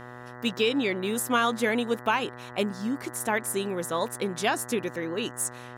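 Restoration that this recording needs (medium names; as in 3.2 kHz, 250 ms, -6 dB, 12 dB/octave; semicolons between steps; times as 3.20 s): de-hum 122.8 Hz, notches 16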